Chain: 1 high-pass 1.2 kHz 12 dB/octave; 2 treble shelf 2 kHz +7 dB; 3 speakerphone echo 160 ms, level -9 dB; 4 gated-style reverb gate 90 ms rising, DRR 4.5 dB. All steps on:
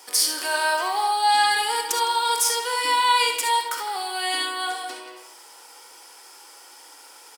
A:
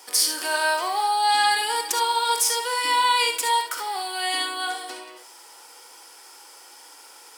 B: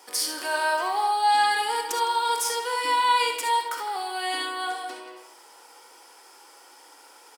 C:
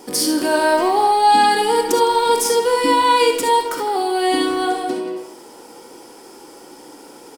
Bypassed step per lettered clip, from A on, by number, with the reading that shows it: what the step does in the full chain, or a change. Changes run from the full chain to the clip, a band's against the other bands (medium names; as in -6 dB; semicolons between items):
3, echo-to-direct -3.0 dB to -4.5 dB; 2, 8 kHz band -5.5 dB; 1, 250 Hz band +21.5 dB